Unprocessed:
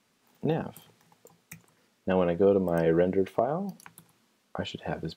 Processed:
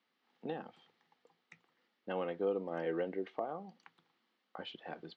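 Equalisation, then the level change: speaker cabinet 420–3800 Hz, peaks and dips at 420 Hz -7 dB, 620 Hz -10 dB, 990 Hz -7 dB, 1500 Hz -6 dB, 2500 Hz -7 dB, 3600 Hz -3 dB; -3.5 dB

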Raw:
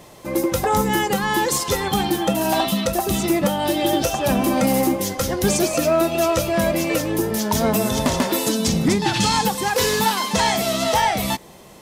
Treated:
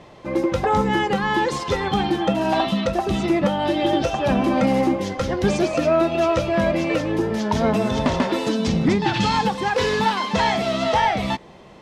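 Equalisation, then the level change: LPF 3400 Hz 12 dB/oct; 0.0 dB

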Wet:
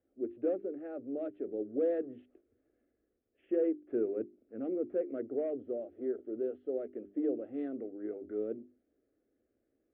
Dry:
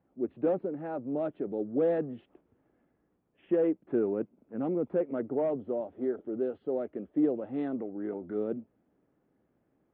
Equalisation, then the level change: LPF 2300 Hz 12 dB/oct; notches 50/100/150/200/250/300/350/400 Hz; fixed phaser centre 390 Hz, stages 4; -2.5 dB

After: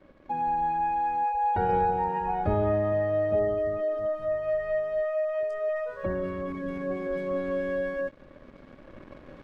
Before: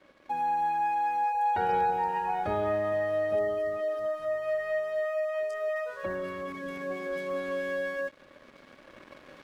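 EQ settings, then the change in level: tilt -3.5 dB/oct; 0.0 dB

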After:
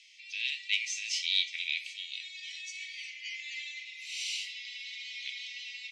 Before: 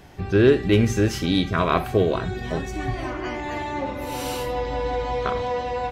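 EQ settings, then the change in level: steep high-pass 2100 Hz 96 dB/oct; LPF 6800 Hz 24 dB/oct; +1.5 dB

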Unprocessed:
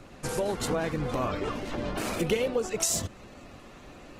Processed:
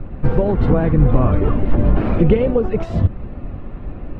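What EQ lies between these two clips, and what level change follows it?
air absorption 410 m; RIAA curve playback; +8.5 dB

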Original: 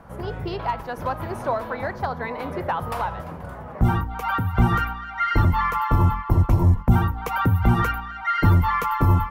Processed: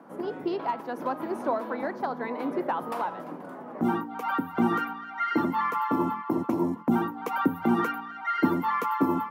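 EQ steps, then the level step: HPF 200 Hz 24 dB/oct; bell 290 Hz +13 dB 1 oct; bell 930 Hz +3 dB 1.4 oct; -7.5 dB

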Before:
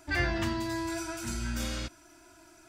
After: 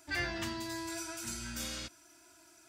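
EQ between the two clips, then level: HPF 99 Hz 6 dB/oct; high shelf 2600 Hz +8.5 dB; -7.5 dB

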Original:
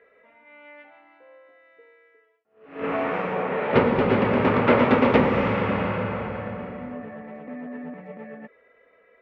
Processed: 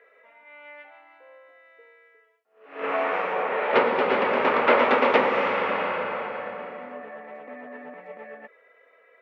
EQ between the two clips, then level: HPF 510 Hz 12 dB/oct; +2.5 dB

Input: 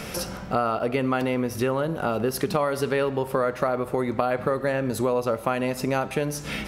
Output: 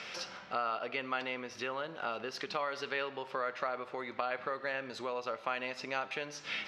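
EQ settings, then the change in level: band-pass 5000 Hz, Q 0.66; air absorption 210 m; +2.5 dB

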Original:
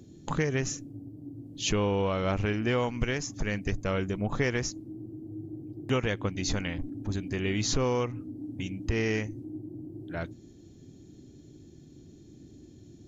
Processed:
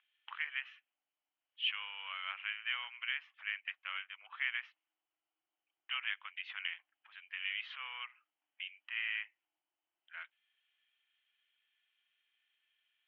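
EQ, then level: HPF 1200 Hz 24 dB/oct; Chebyshev low-pass 3100 Hz, order 6; differentiator; +9.0 dB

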